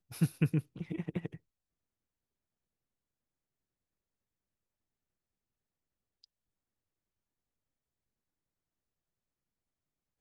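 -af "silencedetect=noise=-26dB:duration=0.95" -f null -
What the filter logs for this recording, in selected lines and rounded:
silence_start: 1.26
silence_end: 10.20 | silence_duration: 8.95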